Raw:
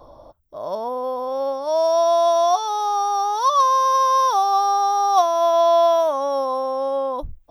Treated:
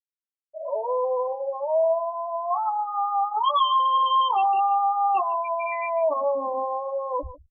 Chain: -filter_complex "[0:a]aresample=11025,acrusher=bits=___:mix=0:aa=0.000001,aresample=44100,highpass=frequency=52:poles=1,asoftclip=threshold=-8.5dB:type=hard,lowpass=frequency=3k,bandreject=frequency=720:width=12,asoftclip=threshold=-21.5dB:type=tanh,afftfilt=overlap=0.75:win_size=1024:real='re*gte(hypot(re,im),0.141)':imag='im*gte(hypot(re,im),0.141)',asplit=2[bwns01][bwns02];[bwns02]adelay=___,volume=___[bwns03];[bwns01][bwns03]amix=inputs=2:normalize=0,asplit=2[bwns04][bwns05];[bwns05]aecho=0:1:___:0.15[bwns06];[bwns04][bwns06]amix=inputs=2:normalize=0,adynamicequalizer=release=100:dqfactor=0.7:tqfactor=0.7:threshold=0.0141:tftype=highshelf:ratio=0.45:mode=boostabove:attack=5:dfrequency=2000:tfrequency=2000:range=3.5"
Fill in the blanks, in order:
6, 14, -3dB, 149